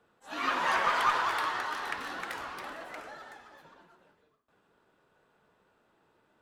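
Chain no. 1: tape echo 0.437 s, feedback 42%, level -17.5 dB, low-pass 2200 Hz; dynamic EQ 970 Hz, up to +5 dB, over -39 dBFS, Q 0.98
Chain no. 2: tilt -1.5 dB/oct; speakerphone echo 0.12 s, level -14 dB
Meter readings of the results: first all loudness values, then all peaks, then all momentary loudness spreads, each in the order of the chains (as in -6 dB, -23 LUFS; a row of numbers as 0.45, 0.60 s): -27.0, -31.5 LUFS; -8.5, -12.5 dBFS; 20, 19 LU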